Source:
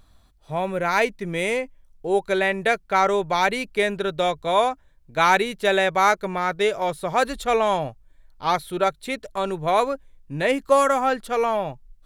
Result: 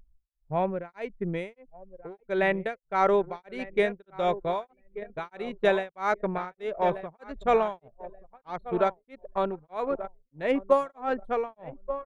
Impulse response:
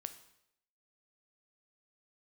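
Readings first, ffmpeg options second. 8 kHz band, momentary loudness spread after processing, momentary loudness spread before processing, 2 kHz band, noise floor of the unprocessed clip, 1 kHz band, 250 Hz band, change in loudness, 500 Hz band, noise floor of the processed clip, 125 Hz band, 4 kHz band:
below −20 dB, 17 LU, 10 LU, −10.5 dB, −56 dBFS, −8.5 dB, −4.5 dB, −6.5 dB, −5.0 dB, −77 dBFS, −5.5 dB, −14.5 dB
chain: -filter_complex "[0:a]asplit=2[link_01][link_02];[link_02]aecho=0:1:1180|2360|3540|4720:0.224|0.0985|0.0433|0.0191[link_03];[link_01][link_03]amix=inputs=2:normalize=0,anlmdn=100,tremolo=f=1.6:d=1,lowpass=frequency=1500:poles=1"

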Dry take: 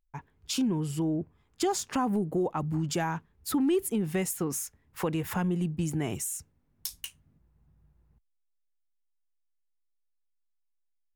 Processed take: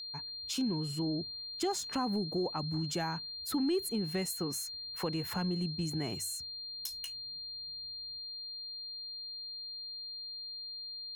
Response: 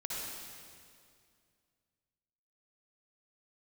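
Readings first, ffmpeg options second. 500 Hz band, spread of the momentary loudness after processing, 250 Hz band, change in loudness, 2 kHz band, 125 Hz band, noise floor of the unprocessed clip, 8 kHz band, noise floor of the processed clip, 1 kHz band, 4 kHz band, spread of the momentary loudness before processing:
−5.5 dB, 7 LU, −5.5 dB, −5.5 dB, −5.5 dB, −5.5 dB, −75 dBFS, −5.5 dB, −44 dBFS, −5.5 dB, +7.5 dB, 11 LU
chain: -af "aeval=exprs='val(0)+0.0178*sin(2*PI*4200*n/s)':channel_layout=same,bandreject=frequency=50:width_type=h:width=6,bandreject=frequency=100:width_type=h:width=6,volume=-5.5dB"

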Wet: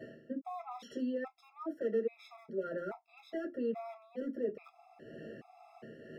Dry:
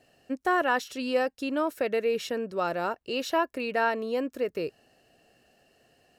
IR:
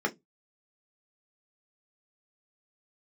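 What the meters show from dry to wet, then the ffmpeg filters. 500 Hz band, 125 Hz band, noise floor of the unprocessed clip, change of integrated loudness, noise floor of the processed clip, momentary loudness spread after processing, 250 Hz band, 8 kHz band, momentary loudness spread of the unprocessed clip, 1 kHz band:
−9.5 dB, −6.5 dB, −70 dBFS, −11.0 dB, −67 dBFS, 18 LU, −7.0 dB, below −20 dB, 6 LU, −17.5 dB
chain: -filter_complex "[0:a]areverse,acompressor=threshold=-41dB:ratio=5,areverse,tremolo=f=2.1:d=0.41,asplit=2[link_01][link_02];[link_02]aeval=exprs='(mod(66.8*val(0)+1,2)-1)/66.8':channel_layout=same,volume=-10.5dB[link_03];[link_01][link_03]amix=inputs=2:normalize=0,lowshelf=frequency=210:gain=11,alimiter=level_in=17dB:limit=-24dB:level=0:latency=1:release=339,volume=-17dB,highshelf=frequency=5600:gain=-11[link_04];[1:a]atrim=start_sample=2205,afade=type=out:start_time=0.31:duration=0.01,atrim=end_sample=14112[link_05];[link_04][link_05]afir=irnorm=-1:irlink=0,afftfilt=real='re*gt(sin(2*PI*1.2*pts/sr)*(1-2*mod(floor(b*sr/1024/670),2)),0)':imag='im*gt(sin(2*PI*1.2*pts/sr)*(1-2*mod(floor(b*sr/1024/670),2)),0)':win_size=1024:overlap=0.75,volume=2.5dB"

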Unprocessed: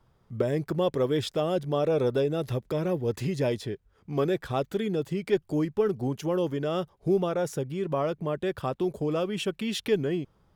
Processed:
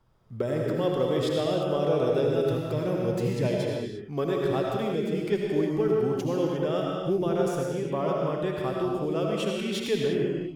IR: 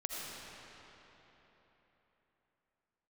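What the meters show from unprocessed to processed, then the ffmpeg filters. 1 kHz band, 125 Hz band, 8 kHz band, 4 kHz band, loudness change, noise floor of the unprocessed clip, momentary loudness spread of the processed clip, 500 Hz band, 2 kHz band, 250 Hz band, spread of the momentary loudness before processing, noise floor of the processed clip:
+1.5 dB, +1.0 dB, can't be measured, +1.0 dB, +1.5 dB, −66 dBFS, 5 LU, +1.5 dB, +1.0 dB, +1.5 dB, 5 LU, −38 dBFS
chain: -filter_complex "[1:a]atrim=start_sample=2205,afade=type=out:start_time=0.41:duration=0.01,atrim=end_sample=18522[link_01];[0:a][link_01]afir=irnorm=-1:irlink=0"

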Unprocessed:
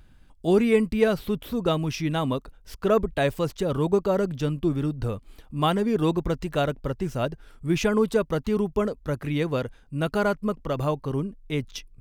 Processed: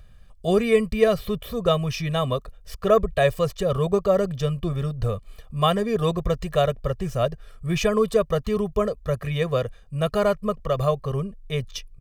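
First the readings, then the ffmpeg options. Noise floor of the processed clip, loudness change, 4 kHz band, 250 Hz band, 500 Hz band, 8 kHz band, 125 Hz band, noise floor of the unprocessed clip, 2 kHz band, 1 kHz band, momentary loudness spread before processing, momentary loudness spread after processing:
−49 dBFS, +2.0 dB, +3.5 dB, −2.0 dB, +3.0 dB, +2.5 dB, +2.5 dB, −54 dBFS, +0.5 dB, +2.5 dB, 9 LU, 9 LU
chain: -af "aecho=1:1:1.7:0.92"

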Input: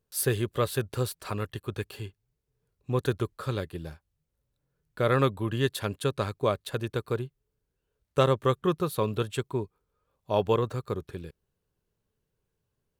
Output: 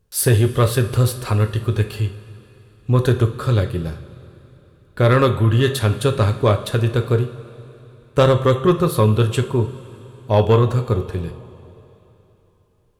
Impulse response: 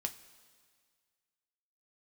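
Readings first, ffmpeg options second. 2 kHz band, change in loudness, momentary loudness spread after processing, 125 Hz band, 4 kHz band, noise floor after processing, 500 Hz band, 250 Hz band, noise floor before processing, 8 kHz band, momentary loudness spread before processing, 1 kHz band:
+9.0 dB, +11.0 dB, 12 LU, +15.0 dB, +9.0 dB, −57 dBFS, +9.5 dB, +10.5 dB, −81 dBFS, +9.5 dB, 15 LU, +8.5 dB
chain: -filter_complex "[0:a]lowshelf=frequency=120:gain=10.5,asplit=2[link_01][link_02];[1:a]atrim=start_sample=2205,asetrate=24696,aresample=44100[link_03];[link_02][link_03]afir=irnorm=-1:irlink=0,volume=3.5dB[link_04];[link_01][link_04]amix=inputs=2:normalize=0,asoftclip=type=tanh:threshold=-5dB"

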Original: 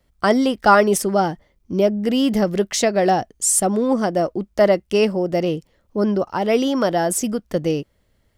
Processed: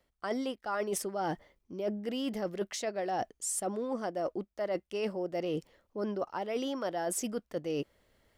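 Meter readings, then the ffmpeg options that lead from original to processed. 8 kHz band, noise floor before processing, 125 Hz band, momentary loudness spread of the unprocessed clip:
−15.5 dB, −64 dBFS, −18.0 dB, 8 LU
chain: -af "bass=frequency=250:gain=-9,treble=frequency=4000:gain=-3,areverse,acompressor=threshold=-31dB:ratio=12,areverse"

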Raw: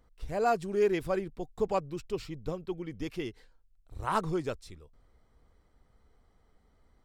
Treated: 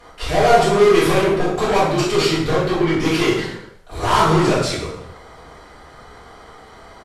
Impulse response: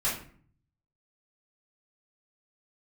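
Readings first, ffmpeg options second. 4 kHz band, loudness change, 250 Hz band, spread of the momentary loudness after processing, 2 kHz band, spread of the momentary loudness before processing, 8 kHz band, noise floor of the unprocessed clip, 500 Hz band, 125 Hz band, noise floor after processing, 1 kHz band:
+24.5 dB, +16.0 dB, +17.0 dB, 14 LU, +19.5 dB, 13 LU, +23.0 dB, −67 dBFS, +15.0 dB, +18.5 dB, −44 dBFS, +16.0 dB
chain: -filter_complex "[0:a]asplit=2[link_01][link_02];[link_02]highpass=frequency=720:poles=1,volume=32dB,asoftclip=type=tanh:threshold=-16.5dB[link_03];[link_01][link_03]amix=inputs=2:normalize=0,lowpass=frequency=5800:poles=1,volume=-6dB,asplit=4[link_04][link_05][link_06][link_07];[link_05]adelay=102,afreqshift=44,volume=-14dB[link_08];[link_06]adelay=204,afreqshift=88,volume=-22.9dB[link_09];[link_07]adelay=306,afreqshift=132,volume=-31.7dB[link_10];[link_04][link_08][link_09][link_10]amix=inputs=4:normalize=0[link_11];[1:a]atrim=start_sample=2205,afade=type=out:start_time=0.33:duration=0.01,atrim=end_sample=14994,asetrate=26460,aresample=44100[link_12];[link_11][link_12]afir=irnorm=-1:irlink=0,volume=-4dB"

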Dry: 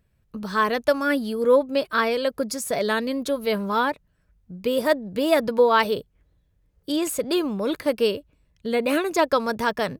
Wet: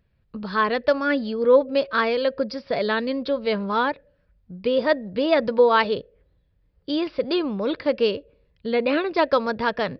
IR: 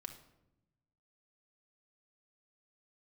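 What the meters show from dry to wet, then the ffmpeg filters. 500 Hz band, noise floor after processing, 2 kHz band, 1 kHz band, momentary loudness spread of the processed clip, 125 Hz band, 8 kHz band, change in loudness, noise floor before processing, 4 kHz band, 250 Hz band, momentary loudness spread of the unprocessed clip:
+1.0 dB, −65 dBFS, +0.5 dB, 0.0 dB, 11 LU, 0.0 dB, below −25 dB, +0.5 dB, −66 dBFS, 0.0 dB, 0.0 dB, 9 LU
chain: -filter_complex "[0:a]asplit=2[link_01][link_02];[link_02]asplit=3[link_03][link_04][link_05];[link_03]bandpass=frequency=530:width_type=q:width=8,volume=0dB[link_06];[link_04]bandpass=frequency=1840:width_type=q:width=8,volume=-6dB[link_07];[link_05]bandpass=frequency=2480:width_type=q:width=8,volume=-9dB[link_08];[link_06][link_07][link_08]amix=inputs=3:normalize=0[link_09];[1:a]atrim=start_sample=2205,asetrate=83790,aresample=44100[link_10];[link_09][link_10]afir=irnorm=-1:irlink=0,volume=-0.5dB[link_11];[link_01][link_11]amix=inputs=2:normalize=0,aresample=11025,aresample=44100"

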